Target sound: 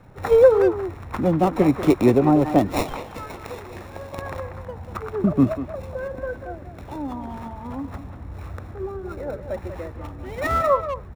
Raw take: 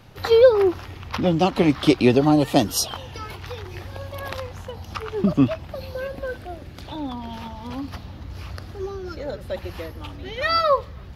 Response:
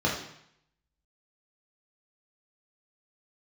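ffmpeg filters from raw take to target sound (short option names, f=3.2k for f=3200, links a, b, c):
-filter_complex "[0:a]asettb=1/sr,asplit=3[a][b][c];[a]atrim=end=2.854[d];[b]atrim=start=2.85:end=4.22,asetpts=PTS-STARTPTS,afade=t=in:d=0.004:c=qsin,afade=t=out:st=1.366:d=0.004:c=qsin,bass=f=250:g=-7,treble=f=4k:g=13[e];[c]atrim=start=4.216[f];[d][e]acrossfade=d=0.004:c1=hsin:c2=qsin[g];[g][f]acrossfade=d=0.004:c1=qsin:c2=hsin,acrossover=split=400|1100|2000[h][i][j][k];[k]acrusher=samples=28:mix=1:aa=0.000001[l];[h][i][j][l]amix=inputs=4:normalize=0,asplit=2[m][n];[n]adelay=190,highpass=300,lowpass=3.4k,asoftclip=type=hard:threshold=-13dB,volume=-9dB[o];[m][o]amix=inputs=2:normalize=0"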